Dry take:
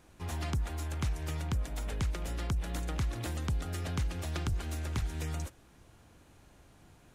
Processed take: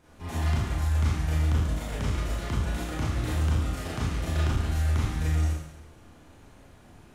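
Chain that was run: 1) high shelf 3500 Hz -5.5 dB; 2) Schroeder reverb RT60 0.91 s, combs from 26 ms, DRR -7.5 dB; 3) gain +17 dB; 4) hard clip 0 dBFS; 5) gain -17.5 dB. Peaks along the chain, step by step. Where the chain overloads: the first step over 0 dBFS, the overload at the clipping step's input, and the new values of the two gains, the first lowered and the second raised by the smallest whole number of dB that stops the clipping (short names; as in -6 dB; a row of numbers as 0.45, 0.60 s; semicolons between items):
-24.0, -11.5, +5.5, 0.0, -17.5 dBFS; step 3, 5.5 dB; step 3 +11 dB, step 5 -11.5 dB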